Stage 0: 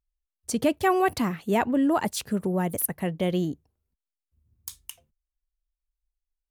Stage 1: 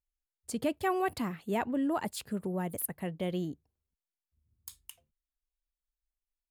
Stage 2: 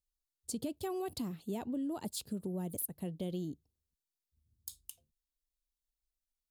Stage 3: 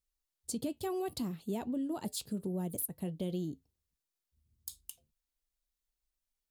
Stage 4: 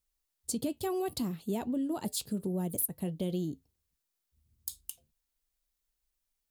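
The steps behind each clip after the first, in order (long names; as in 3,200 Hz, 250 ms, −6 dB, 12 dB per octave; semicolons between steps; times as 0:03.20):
notch filter 5,900 Hz, Q 6.9; level −8 dB
drawn EQ curve 320 Hz 0 dB, 2,000 Hz −15 dB, 3,800 Hz +2 dB; downward compressor, threshold −33 dBFS, peak gain reduction 6.5 dB; level −1 dB
flanger 0.64 Hz, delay 4.5 ms, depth 1.9 ms, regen −77%; level +6 dB
high-shelf EQ 9,400 Hz +3.5 dB; level +3 dB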